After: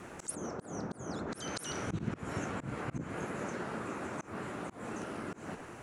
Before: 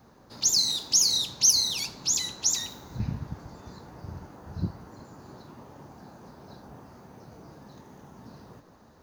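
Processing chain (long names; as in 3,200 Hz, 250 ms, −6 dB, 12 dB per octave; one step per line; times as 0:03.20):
volume swells 291 ms
change of speed 1.55×
treble cut that deepens with the level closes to 1,000 Hz, closed at −30 dBFS
level +8.5 dB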